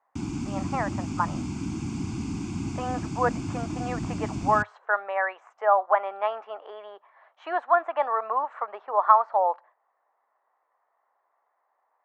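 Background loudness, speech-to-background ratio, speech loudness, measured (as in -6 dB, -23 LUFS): -32.5 LUFS, 6.0 dB, -26.5 LUFS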